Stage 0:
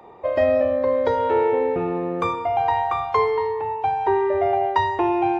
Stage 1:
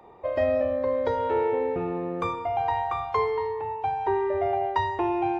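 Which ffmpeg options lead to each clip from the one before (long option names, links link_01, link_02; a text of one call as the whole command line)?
ffmpeg -i in.wav -af "lowshelf=frequency=78:gain=8,volume=-5.5dB" out.wav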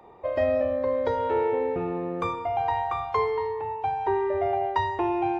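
ffmpeg -i in.wav -af anull out.wav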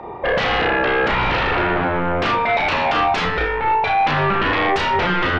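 ffmpeg -i in.wav -filter_complex "[0:a]aeval=exprs='0.237*sin(PI/2*7.08*val(0)/0.237)':channel_layout=same,lowpass=2800,asplit=2[link_01][link_02];[link_02]adelay=33,volume=-5dB[link_03];[link_01][link_03]amix=inputs=2:normalize=0,volume=-3.5dB" out.wav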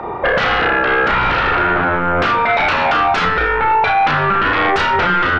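ffmpeg -i in.wav -af "equalizer=frequency=1400:width=3.4:gain=9,alimiter=limit=-14.5dB:level=0:latency=1:release=135,volume=7dB" out.wav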